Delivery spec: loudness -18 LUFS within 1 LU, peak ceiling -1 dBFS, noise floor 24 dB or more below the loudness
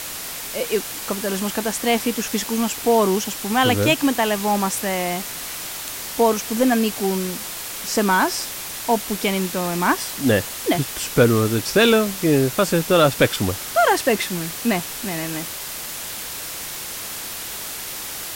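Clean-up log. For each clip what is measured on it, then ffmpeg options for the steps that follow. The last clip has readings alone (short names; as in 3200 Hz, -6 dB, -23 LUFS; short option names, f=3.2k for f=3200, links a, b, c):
noise floor -31 dBFS; noise floor target -45 dBFS; loudness -21.0 LUFS; peak -2.5 dBFS; loudness target -18.0 LUFS
-> -af "afftdn=nr=14:nf=-31"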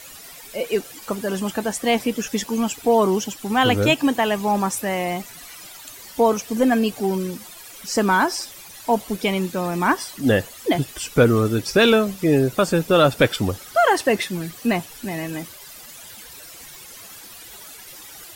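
noise floor -41 dBFS; noise floor target -45 dBFS
-> -af "afftdn=nr=6:nf=-41"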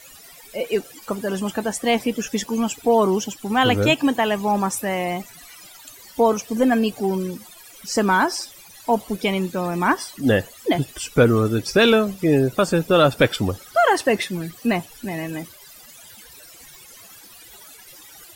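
noise floor -45 dBFS; loudness -21.0 LUFS; peak -3.0 dBFS; loudness target -18.0 LUFS
-> -af "volume=3dB,alimiter=limit=-1dB:level=0:latency=1"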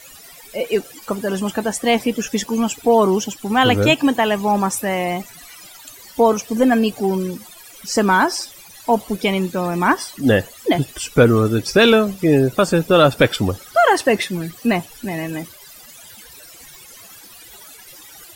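loudness -18.0 LUFS; peak -1.0 dBFS; noise floor -42 dBFS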